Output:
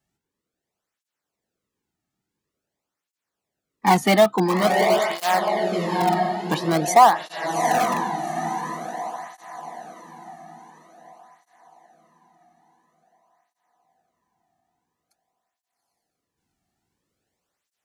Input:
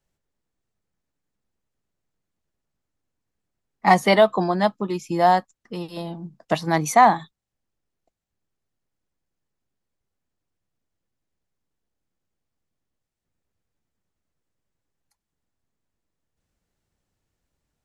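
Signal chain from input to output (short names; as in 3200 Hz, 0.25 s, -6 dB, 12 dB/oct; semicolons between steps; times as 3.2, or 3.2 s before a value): diffused feedback echo 0.803 s, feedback 42%, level -4 dB; in parallel at -10 dB: wrapped overs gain 13.5 dB; on the sum: tape flanging out of phase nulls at 0.48 Hz, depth 2.1 ms; gain +2 dB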